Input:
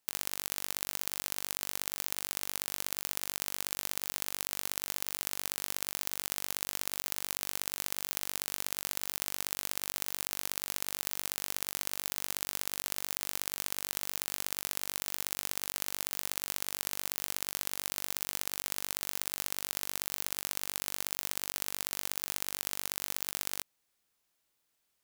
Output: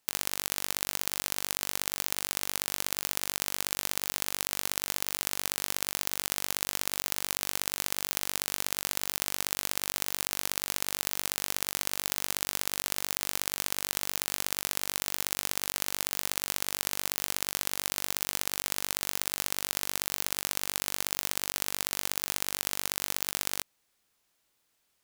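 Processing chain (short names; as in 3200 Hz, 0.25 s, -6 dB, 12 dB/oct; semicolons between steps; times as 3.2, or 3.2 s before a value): high shelf 11000 Hz -3.5 dB; gain +5.5 dB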